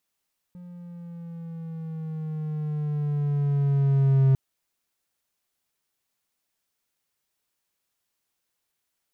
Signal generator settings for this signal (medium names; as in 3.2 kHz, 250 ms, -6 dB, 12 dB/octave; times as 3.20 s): gliding synth tone triangle, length 3.80 s, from 178 Hz, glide -5 st, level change +25 dB, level -13 dB